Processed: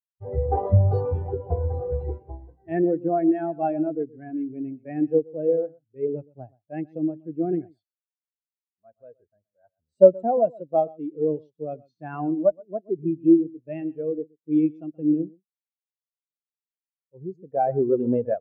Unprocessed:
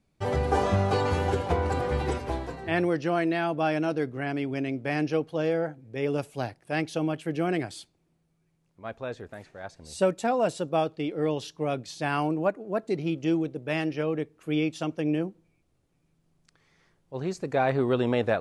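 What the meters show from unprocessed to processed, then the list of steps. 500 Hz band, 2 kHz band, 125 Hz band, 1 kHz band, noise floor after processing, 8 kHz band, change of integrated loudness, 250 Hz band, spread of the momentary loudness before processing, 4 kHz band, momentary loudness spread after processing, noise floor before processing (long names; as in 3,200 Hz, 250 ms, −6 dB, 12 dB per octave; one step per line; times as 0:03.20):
+4.0 dB, below −15 dB, +3.0 dB, −0.5 dB, below −85 dBFS, below −35 dB, +3.5 dB, +4.0 dB, 10 LU, below −30 dB, 15 LU, −71 dBFS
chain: harmonic generator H 2 −14 dB, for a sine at −10 dBFS
single-tap delay 124 ms −10 dB
every bin expanded away from the loudest bin 2.5 to 1
level +8 dB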